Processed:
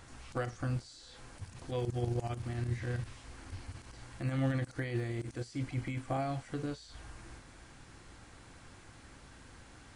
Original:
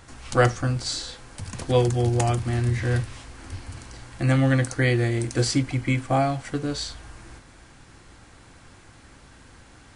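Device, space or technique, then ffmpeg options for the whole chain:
de-esser from a sidechain: -filter_complex "[0:a]asplit=2[link_01][link_02];[link_02]highpass=6300,apad=whole_len=439067[link_03];[link_01][link_03]sidechaincompress=threshold=-56dB:ratio=4:attack=0.91:release=28,volume=-4.5dB"

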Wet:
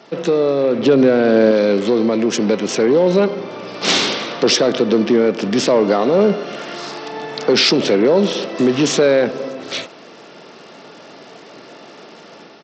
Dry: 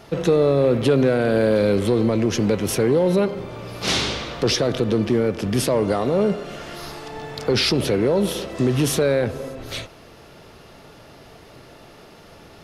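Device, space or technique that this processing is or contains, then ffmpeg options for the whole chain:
Bluetooth headset: -filter_complex "[0:a]asettb=1/sr,asplit=3[link_01][link_02][link_03];[link_01]atrim=end=0.784[link_04];[link_02]atrim=start=0.78:end=1.51,asetpts=PTS-STARTPTS,afade=type=in:duration=0.004:curve=qsin,afade=type=out:start_time=0.726:duration=0.004:curve=qsin,lowshelf=frequency=410:gain=6[link_05];[link_03]atrim=start=1.506[link_06];[link_04][link_05]acrossfade=duration=0.004:curve1=hsin:curve2=qsin[link_07];[link_07][link_06]acrossfade=duration=0.004:curve1=qsin:curve2=hsin,highpass=frequency=190:width=0.5412,highpass=frequency=190:width=1.3066,dynaudnorm=framelen=690:gausssize=3:maxgain=5.5dB,aresample=16000,aresample=44100,volume=1.5dB" -ar 32000 -c:a sbc -b:a 64k

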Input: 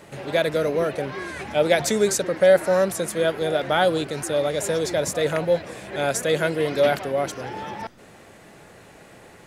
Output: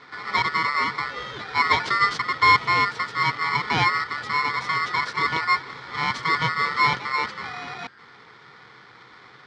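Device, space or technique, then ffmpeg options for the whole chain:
ring modulator pedal into a guitar cabinet: -af "aeval=exprs='val(0)*sgn(sin(2*PI*1600*n/s))':channel_layout=same,highpass=98,equalizer=frequency=130:width_type=q:width=4:gain=9,equalizer=frequency=440:width_type=q:width=4:gain=6,equalizer=frequency=620:width_type=q:width=4:gain=-5,equalizer=frequency=1400:width_type=q:width=4:gain=3,equalizer=frequency=2700:width_type=q:width=4:gain=-9,lowpass=frequency=4300:width=0.5412,lowpass=frequency=4300:width=1.3066"

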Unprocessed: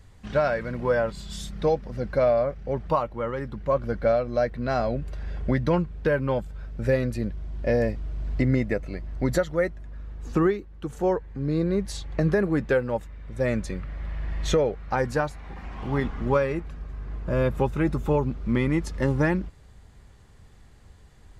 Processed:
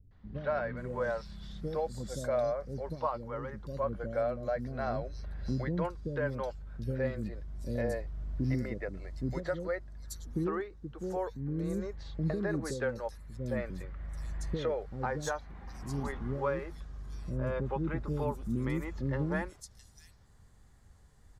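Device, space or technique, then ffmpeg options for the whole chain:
exciter from parts: -filter_complex "[0:a]acrossover=split=390|3800[link_01][link_02][link_03];[link_02]adelay=110[link_04];[link_03]adelay=770[link_05];[link_01][link_04][link_05]amix=inputs=3:normalize=0,asplit=2[link_06][link_07];[link_07]highpass=frequency=2400:width=0.5412,highpass=frequency=2400:width=1.3066,asoftclip=type=tanh:threshold=-28.5dB,volume=-5dB[link_08];[link_06][link_08]amix=inputs=2:normalize=0,volume=-8dB"

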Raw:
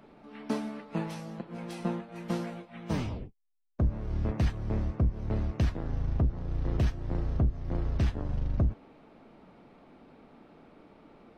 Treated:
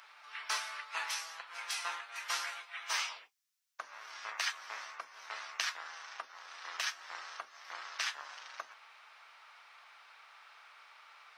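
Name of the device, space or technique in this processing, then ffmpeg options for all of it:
headphones lying on a table: -af "highpass=frequency=1200:width=0.5412,highpass=frequency=1200:width=1.3066,equalizer=frequency=5700:width_type=o:width=0.56:gain=5.5,volume=9.5dB"

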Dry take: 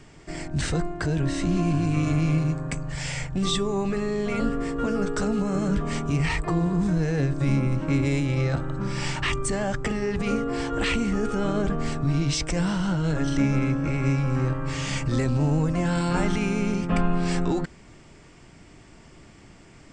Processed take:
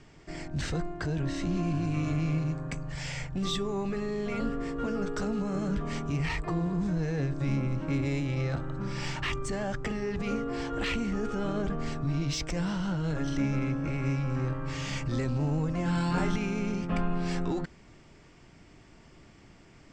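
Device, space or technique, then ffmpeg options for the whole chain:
parallel distortion: -filter_complex "[0:a]asettb=1/sr,asplit=3[link_01][link_02][link_03];[link_01]atrim=end=15.844[link_04];[link_02]atrim=start=15.84:end=16.36,asetpts=PTS-STARTPTS,afade=type=in:duration=0.004:curve=qsin,afade=type=out:start_time=0.516:duration=0.004:curve=qsin,asplit=2[link_05][link_06];[link_06]adelay=22,volume=-2dB[link_07];[link_05][link_07]amix=inputs=2:normalize=0,atrim=end_sample=22932[link_08];[link_03]atrim=start=16.356[link_09];[link_04][link_08]acrossfade=duration=0.004:curve1=hsin:curve2=qsin[link_10];[link_10][link_09]acrossfade=duration=0.004:curve1=qsin:curve2=hsin,lowpass=frequency=7100:width=0.5412,lowpass=frequency=7100:width=1.3066,asplit=2[link_11][link_12];[link_12]asoftclip=type=hard:threshold=-26dB,volume=-10dB[link_13];[link_11][link_13]amix=inputs=2:normalize=0,volume=-7.5dB"

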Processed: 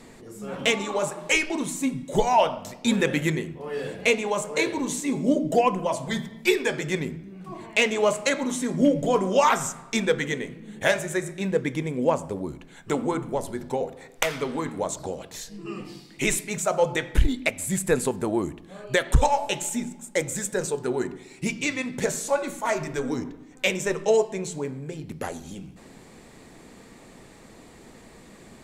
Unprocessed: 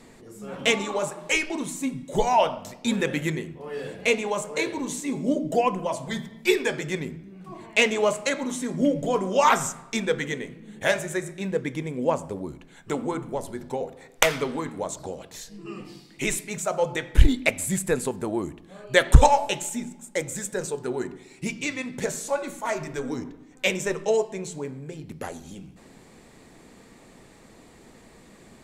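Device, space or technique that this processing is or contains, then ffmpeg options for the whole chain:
limiter into clipper: -af "alimiter=limit=-11dB:level=0:latency=1:release=480,asoftclip=type=hard:threshold=-12dB,volume=2.5dB"

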